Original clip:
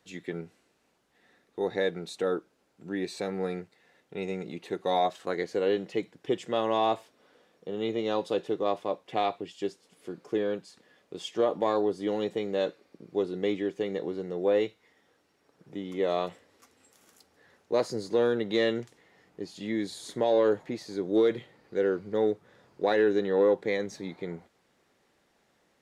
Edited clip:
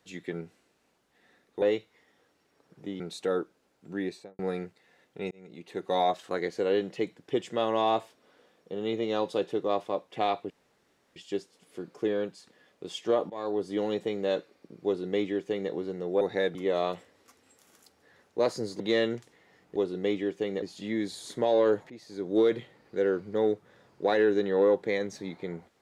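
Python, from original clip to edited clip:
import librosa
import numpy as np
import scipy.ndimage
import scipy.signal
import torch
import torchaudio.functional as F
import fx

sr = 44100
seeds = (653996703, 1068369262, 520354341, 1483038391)

y = fx.studio_fade_out(x, sr, start_s=2.95, length_s=0.4)
y = fx.edit(y, sr, fx.swap(start_s=1.62, length_s=0.34, other_s=14.51, other_length_s=1.38),
    fx.fade_in_span(start_s=4.27, length_s=0.59),
    fx.insert_room_tone(at_s=9.46, length_s=0.66),
    fx.fade_in_from(start_s=11.6, length_s=0.37, floor_db=-19.5),
    fx.duplicate(start_s=13.15, length_s=0.86, to_s=19.41),
    fx.cut(start_s=18.14, length_s=0.31),
    fx.fade_in_from(start_s=20.69, length_s=0.48, floor_db=-14.5), tone=tone)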